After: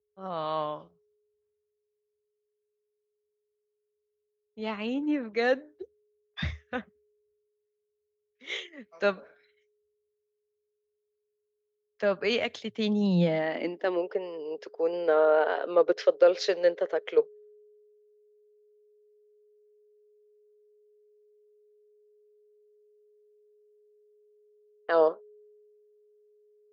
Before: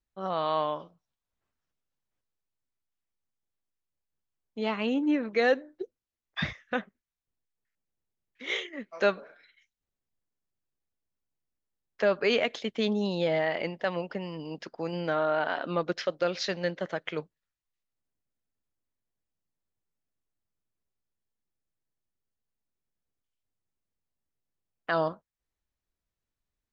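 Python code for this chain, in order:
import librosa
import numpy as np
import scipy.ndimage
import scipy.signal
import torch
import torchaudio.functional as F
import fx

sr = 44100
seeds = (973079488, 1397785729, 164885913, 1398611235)

y = x + 10.0 ** (-60.0 / 20.0) * np.sin(2.0 * np.pi * 420.0 * np.arange(len(x)) / sr)
y = fx.filter_sweep_highpass(y, sr, from_hz=75.0, to_hz=440.0, start_s=12.32, end_s=14.12, q=5.5)
y = fx.band_widen(y, sr, depth_pct=40)
y = y * librosa.db_to_amplitude(-3.5)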